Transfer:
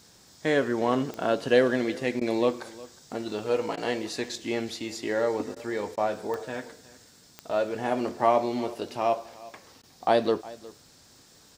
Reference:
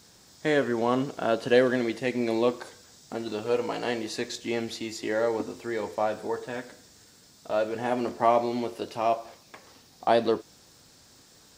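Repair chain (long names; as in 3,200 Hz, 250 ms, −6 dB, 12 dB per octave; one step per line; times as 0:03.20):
click removal
repair the gap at 0:02.20/0:03.76/0:05.55/0:05.96/0:09.82, 12 ms
echo removal 361 ms −20 dB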